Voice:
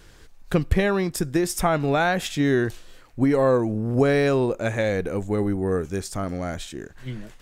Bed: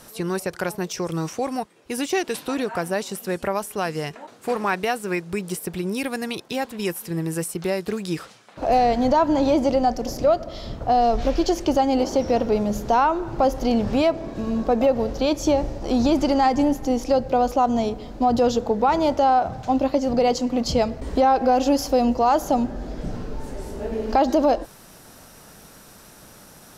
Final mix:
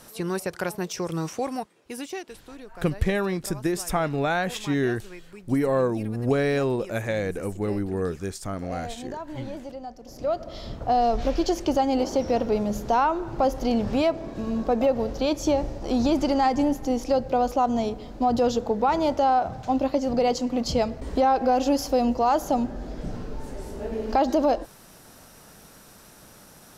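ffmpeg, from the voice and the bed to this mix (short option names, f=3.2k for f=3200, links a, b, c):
-filter_complex "[0:a]adelay=2300,volume=-3.5dB[a];[1:a]volume=12.5dB,afade=t=out:st=1.41:d=0.96:silence=0.16788,afade=t=in:st=10.05:d=0.5:silence=0.177828[b];[a][b]amix=inputs=2:normalize=0"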